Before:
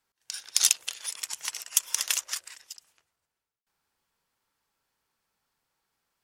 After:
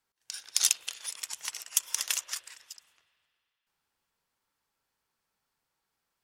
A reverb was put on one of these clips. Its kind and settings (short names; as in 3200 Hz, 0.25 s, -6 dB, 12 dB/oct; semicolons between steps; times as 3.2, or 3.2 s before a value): spring tank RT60 2.6 s, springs 39/47 ms, chirp 30 ms, DRR 18 dB; gain -3 dB